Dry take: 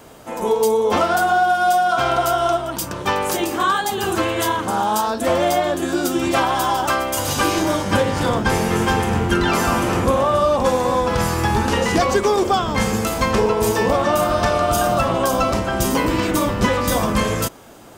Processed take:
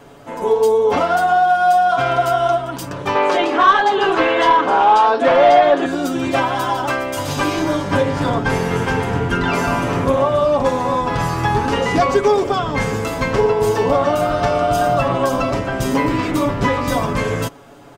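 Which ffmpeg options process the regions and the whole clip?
ffmpeg -i in.wav -filter_complex "[0:a]asettb=1/sr,asplit=3[link_01][link_02][link_03];[link_01]atrim=end=3.154[link_04];[link_02]atrim=start=3.15:end=5.86,asetpts=PTS-STARTPTS,afade=type=in:duration=0.004:curve=qsin,afade=type=out:start_time=2.706:duration=0.004:curve=qsin,highpass=350,lowpass=3600,aeval=exprs='0.422*sin(PI/2*1.58*val(0)/0.422)':channel_layout=same[link_05];[link_03]atrim=start=5.856[link_06];[link_04][link_05]acrossfade=duration=0.004:curve1=hsin:curve2=qsin[link_07];[link_07][link_06]acrossfade=duration=0.004:curve1=qsin:curve2=hsin,lowpass=frequency=3000:poles=1,aecho=1:1:7.1:0.61" out.wav

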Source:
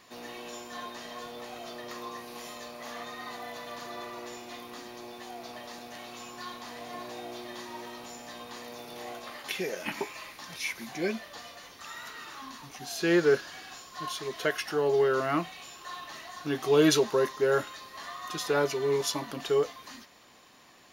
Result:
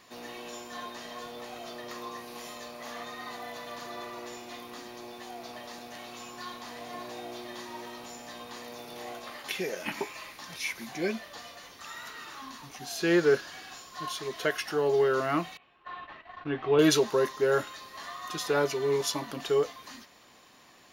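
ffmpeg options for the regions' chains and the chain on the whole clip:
ffmpeg -i in.wav -filter_complex "[0:a]asettb=1/sr,asplit=3[link_01][link_02][link_03];[link_01]atrim=end=15.574[link_04];[link_02]atrim=start=15.57:end=16.79,asetpts=PTS-STARTPTS,afade=type=in:duration=0.004:curve=qsin,afade=type=out:start_time=1.216:duration=0.004:curve=qsin,lowpass=frequency=2800:width=0.5412,lowpass=frequency=2800:width=1.3066,agate=range=-13dB:threshold=-46dB:ratio=16:release=100:detection=peak,asubboost=boost=7.5:cutoff=93[link_05];[link_03]atrim=start=16.786[link_06];[link_04][link_05]acrossfade=duration=0.004:curve1=hsin:curve2=qsin[link_07];[link_07][link_06]acrossfade=duration=0.004:curve1=qsin:curve2=hsin" out.wav

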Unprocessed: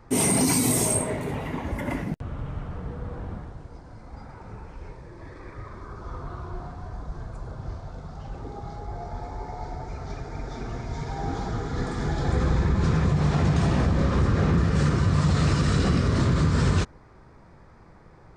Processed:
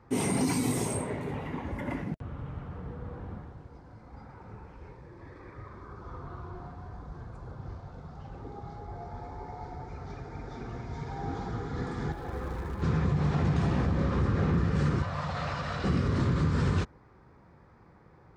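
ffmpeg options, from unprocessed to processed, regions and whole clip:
ffmpeg -i in.wav -filter_complex "[0:a]asettb=1/sr,asplit=3[link_01][link_02][link_03];[link_01]atrim=end=12.124[link_04];[link_02]atrim=start=12.12:end=12.82,asetpts=PTS-STARTPTS,afade=type=in:duration=0.004:curve=qsin,afade=type=out:start_time=0.696:duration=0.004:curve=qsin,lowpass=frequency=1300:poles=1,equalizer=frequency=140:width=0.57:gain=-12,acrusher=bits=5:mode=log:mix=0:aa=0.000001[link_05];[link_03]atrim=start=12.816[link_06];[link_04][link_05]acrossfade=duration=0.004:curve1=hsin:curve2=qsin[link_07];[link_07][link_06]acrossfade=duration=0.004:curve1=qsin:curve2=hsin,asettb=1/sr,asplit=3[link_08][link_09][link_10];[link_08]atrim=end=15.024[link_11];[link_09]atrim=start=15.02:end=15.84,asetpts=PTS-STARTPTS,afade=type=in:duration=0.004:curve=qsin,afade=type=out:start_time=0.816:duration=0.004:curve=qsin,acrossover=split=6100[link_12][link_13];[link_13]acompressor=threshold=-59dB:ratio=4:attack=1:release=60[link_14];[link_12][link_14]amix=inputs=2:normalize=0,lowshelf=frequency=480:width_type=q:width=3:gain=-9[link_15];[link_10]atrim=start=15.836[link_16];[link_11][link_15]acrossfade=duration=0.004:curve1=hsin:curve2=qsin[link_17];[link_17][link_16]acrossfade=duration=0.004:curve1=qsin:curve2=hsin,highpass=57,highshelf=frequency=5600:gain=-12,bandreject=frequency=640:width=12,volume=-4.5dB" out.wav

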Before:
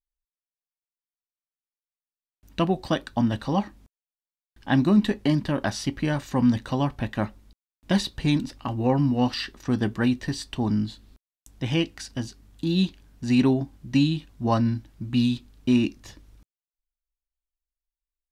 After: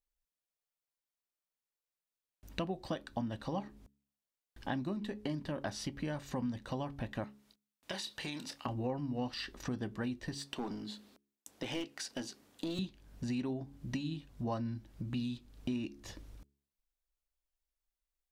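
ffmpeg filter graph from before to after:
ffmpeg -i in.wav -filter_complex "[0:a]asettb=1/sr,asplit=3[link_01][link_02][link_03];[link_01]atrim=end=7.244[link_04];[link_02]atrim=start=7.24:end=8.66,asetpts=PTS-STARTPTS,afade=type=in:duration=0.004:curve=qsin,afade=type=out:start_time=1.416:duration=0.004:curve=qsin,highpass=frequency=1200:poles=1,acompressor=threshold=-33dB:ratio=6:attack=3.2:release=140:knee=1:detection=peak,asplit=2[link_05][link_06];[link_06]adelay=27,volume=-9.5dB[link_07];[link_05][link_07]amix=inputs=2:normalize=0,atrim=end_sample=62622[link_08];[link_03]atrim=start=8.656[link_09];[link_04][link_08]acrossfade=duration=0.004:curve1=hsin:curve2=qsin[link_10];[link_10][link_09]acrossfade=duration=0.004:curve1=qsin:curve2=hsin,asettb=1/sr,asplit=3[link_11][link_12][link_13];[link_11]atrim=end=10.364[link_14];[link_12]atrim=start=10.36:end=12.79,asetpts=PTS-STARTPTS,afade=type=in:duration=0.004:curve=qsin,afade=type=out:start_time=2.426:duration=0.004:curve=qsin,highpass=290,aeval=exprs='clip(val(0),-1,0.0355)':channel_layout=same[link_15];[link_13]atrim=start=12.786[link_16];[link_14][link_15]acrossfade=duration=0.004:curve1=hsin:curve2=qsin[link_17];[link_17][link_16]acrossfade=duration=0.004:curve1=qsin:curve2=hsin,acompressor=threshold=-38dB:ratio=4,equalizer=frequency=540:width=1.6:gain=4,bandreject=frequency=69.84:width_type=h:width=4,bandreject=frequency=139.68:width_type=h:width=4,bandreject=frequency=209.52:width_type=h:width=4,bandreject=frequency=279.36:width_type=h:width=4,bandreject=frequency=349.2:width_type=h:width=4,bandreject=frequency=419.04:width_type=h:width=4" out.wav

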